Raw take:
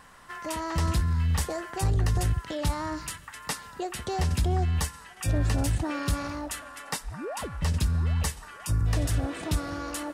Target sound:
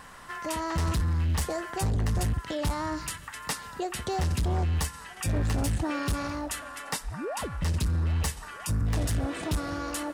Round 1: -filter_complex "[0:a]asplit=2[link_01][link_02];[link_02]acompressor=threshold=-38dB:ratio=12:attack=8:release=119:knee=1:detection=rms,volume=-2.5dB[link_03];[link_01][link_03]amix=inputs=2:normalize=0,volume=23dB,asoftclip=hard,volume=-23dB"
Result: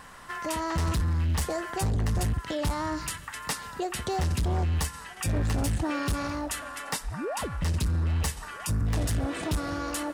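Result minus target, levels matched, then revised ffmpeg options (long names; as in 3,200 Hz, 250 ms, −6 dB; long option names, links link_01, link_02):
downward compressor: peak gain reduction −7 dB
-filter_complex "[0:a]asplit=2[link_01][link_02];[link_02]acompressor=threshold=-45.5dB:ratio=12:attack=8:release=119:knee=1:detection=rms,volume=-2.5dB[link_03];[link_01][link_03]amix=inputs=2:normalize=0,volume=23dB,asoftclip=hard,volume=-23dB"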